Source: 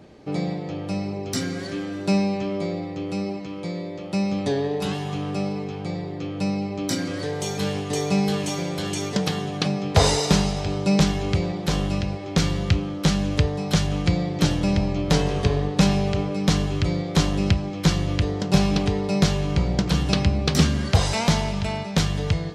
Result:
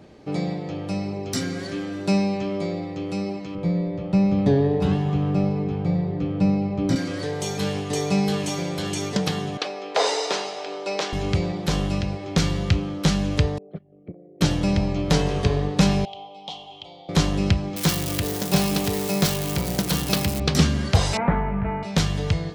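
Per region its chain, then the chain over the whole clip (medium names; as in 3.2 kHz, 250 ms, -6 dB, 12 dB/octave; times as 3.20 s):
3.55–6.96 s: RIAA curve playback + hum notches 50/100/150/200/250/300/350/400/450 Hz
9.57–11.13 s: high-pass 380 Hz 24 dB/octave + distance through air 73 m
13.58–14.41 s: resonances exaggerated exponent 2 + gate -18 dBFS, range -17 dB + cabinet simulation 340–2100 Hz, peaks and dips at 400 Hz +7 dB, 620 Hz +5 dB, 940 Hz -10 dB, 1.5 kHz -7 dB
16.05–17.09 s: two resonant band-passes 1.6 kHz, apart 2 oct + careless resampling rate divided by 2×, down none, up filtered
17.76–20.40 s: zero-crossing glitches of -17.5 dBFS + high-pass 160 Hz 6 dB/octave
21.17–21.83 s: steep low-pass 2 kHz + doubling 16 ms -4.5 dB
whole clip: none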